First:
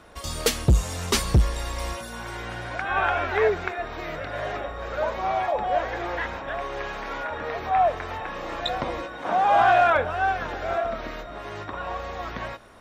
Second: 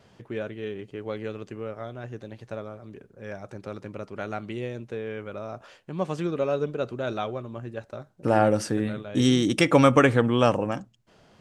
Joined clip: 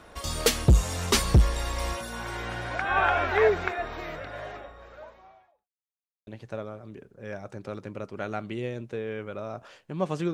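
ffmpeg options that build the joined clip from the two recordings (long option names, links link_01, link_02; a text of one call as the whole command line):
ffmpeg -i cue0.wav -i cue1.wav -filter_complex "[0:a]apad=whole_dur=10.33,atrim=end=10.33,asplit=2[link_01][link_02];[link_01]atrim=end=5.69,asetpts=PTS-STARTPTS,afade=type=out:start_time=3.7:duration=1.99:curve=qua[link_03];[link_02]atrim=start=5.69:end=6.27,asetpts=PTS-STARTPTS,volume=0[link_04];[1:a]atrim=start=2.26:end=6.32,asetpts=PTS-STARTPTS,afade=type=in:duration=0.004:curve=hsin[link_05];[link_03][link_04][link_05]concat=n=3:v=0:a=1" out.wav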